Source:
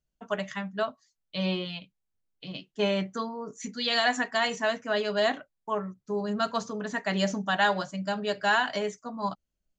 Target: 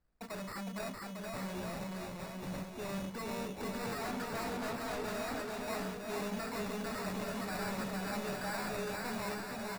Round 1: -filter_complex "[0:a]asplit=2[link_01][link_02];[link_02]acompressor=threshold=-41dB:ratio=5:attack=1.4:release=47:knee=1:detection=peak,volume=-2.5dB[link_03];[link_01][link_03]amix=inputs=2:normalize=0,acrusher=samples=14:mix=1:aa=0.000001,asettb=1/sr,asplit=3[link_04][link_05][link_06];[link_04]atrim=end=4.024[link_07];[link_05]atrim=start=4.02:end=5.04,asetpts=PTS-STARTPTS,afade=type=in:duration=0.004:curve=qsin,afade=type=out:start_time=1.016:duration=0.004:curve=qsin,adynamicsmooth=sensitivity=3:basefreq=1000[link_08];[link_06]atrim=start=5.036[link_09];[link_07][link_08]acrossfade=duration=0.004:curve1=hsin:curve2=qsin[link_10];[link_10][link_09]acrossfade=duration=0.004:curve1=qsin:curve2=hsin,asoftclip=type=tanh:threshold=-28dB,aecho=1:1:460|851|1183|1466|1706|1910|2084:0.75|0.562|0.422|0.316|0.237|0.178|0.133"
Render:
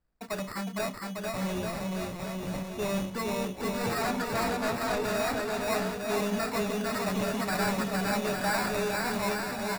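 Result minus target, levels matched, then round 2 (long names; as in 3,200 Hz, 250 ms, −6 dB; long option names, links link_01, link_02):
soft clipping: distortion −6 dB
-filter_complex "[0:a]asplit=2[link_01][link_02];[link_02]acompressor=threshold=-41dB:ratio=5:attack=1.4:release=47:knee=1:detection=peak,volume=-2.5dB[link_03];[link_01][link_03]amix=inputs=2:normalize=0,acrusher=samples=14:mix=1:aa=0.000001,asettb=1/sr,asplit=3[link_04][link_05][link_06];[link_04]atrim=end=4.024[link_07];[link_05]atrim=start=4.02:end=5.04,asetpts=PTS-STARTPTS,afade=type=in:duration=0.004:curve=qsin,afade=type=out:start_time=1.016:duration=0.004:curve=qsin,adynamicsmooth=sensitivity=3:basefreq=1000[link_08];[link_06]atrim=start=5.036[link_09];[link_07][link_08]acrossfade=duration=0.004:curve1=hsin:curve2=qsin[link_10];[link_10][link_09]acrossfade=duration=0.004:curve1=qsin:curve2=hsin,asoftclip=type=tanh:threshold=-40dB,aecho=1:1:460|851|1183|1466|1706|1910|2084:0.75|0.562|0.422|0.316|0.237|0.178|0.133"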